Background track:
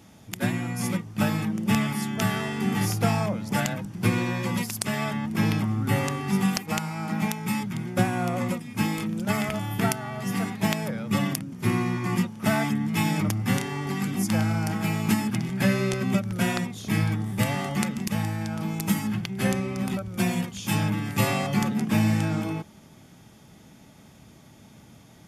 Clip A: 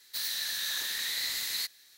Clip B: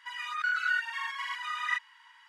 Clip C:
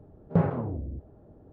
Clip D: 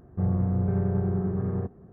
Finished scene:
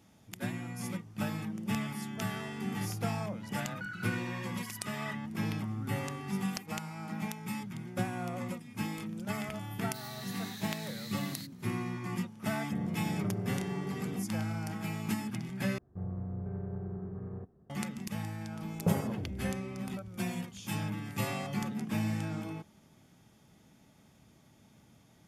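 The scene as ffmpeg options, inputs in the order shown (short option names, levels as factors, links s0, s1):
-filter_complex "[4:a]asplit=2[s0][s1];[0:a]volume=0.299[s2];[s0]highpass=f=140:w=0.5412,highpass=f=140:w=1.3066[s3];[s2]asplit=2[s4][s5];[s4]atrim=end=15.784[s6];[s1]atrim=end=1.92,asetpts=PTS-STARTPTS,volume=0.224[s7];[s5]atrim=start=17.696[s8];[2:a]atrim=end=2.28,asetpts=PTS-STARTPTS,volume=0.224,afade=t=in:d=0.004:c=hsin,afade=t=out:st=2.276:d=0.004:c=hsin,adelay=148617S[s9];[1:a]atrim=end=1.97,asetpts=PTS-STARTPTS,volume=0.188,afade=t=in:d=0.004:c=hsin,afade=t=out:st=1.966:d=0.004:c=hsin,adelay=9800[s10];[s3]atrim=end=1.92,asetpts=PTS-STARTPTS,volume=0.355,afade=t=in:d=0.004:c=hsin,afade=t=out:st=1.916:d=0.004:c=hsin,adelay=12530[s11];[3:a]atrim=end=1.52,asetpts=PTS-STARTPTS,volume=0.473,afade=t=in:d=0.004:c=hsin,afade=t=out:st=1.516:d=0.004:c=hsin,adelay=18510[s12];[s6][s7]acrossfade=d=0.004:c1=hsin:c2=hsin[s13];[s13][s8]acrossfade=d=0.004:c1=hsin:c2=hsin[s14];[s14][s9][s10][s11][s12]amix=inputs=5:normalize=0"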